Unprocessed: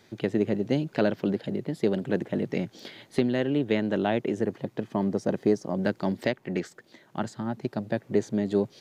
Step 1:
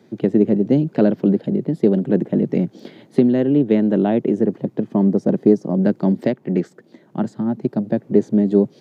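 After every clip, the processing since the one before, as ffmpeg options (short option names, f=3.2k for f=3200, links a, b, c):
-af "highpass=f=150:w=0.5412,highpass=f=150:w=1.3066,tiltshelf=f=680:g=9.5,volume=4.5dB"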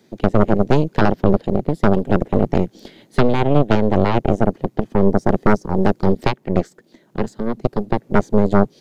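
-af "highshelf=f=2.9k:g=11,aeval=exprs='0.944*(cos(1*acos(clip(val(0)/0.944,-1,1)))-cos(1*PI/2))+0.422*(cos(6*acos(clip(val(0)/0.944,-1,1)))-cos(6*PI/2))':c=same,volume=-4dB"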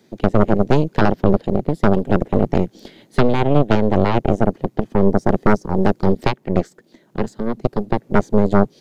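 -af anull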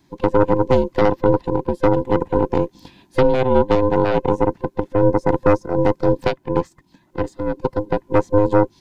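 -af "afftfilt=real='real(if(between(b,1,1008),(2*floor((b-1)/24)+1)*24-b,b),0)':imag='imag(if(between(b,1,1008),(2*floor((b-1)/24)+1)*24-b,b),0)*if(between(b,1,1008),-1,1)':win_size=2048:overlap=0.75,volume=-3dB"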